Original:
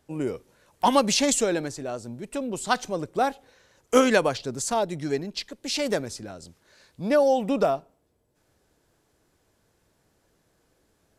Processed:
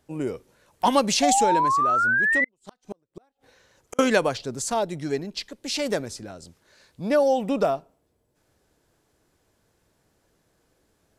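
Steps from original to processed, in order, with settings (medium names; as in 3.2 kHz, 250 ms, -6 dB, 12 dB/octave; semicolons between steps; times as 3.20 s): 1.22–2.49 s: painted sound rise 700–2100 Hz -21 dBFS; 2.44–3.99 s: inverted gate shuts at -22 dBFS, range -41 dB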